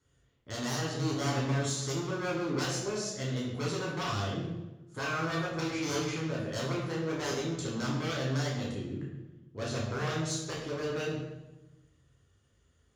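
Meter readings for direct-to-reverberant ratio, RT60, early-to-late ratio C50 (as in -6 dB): -4.5 dB, 1.1 s, 3.0 dB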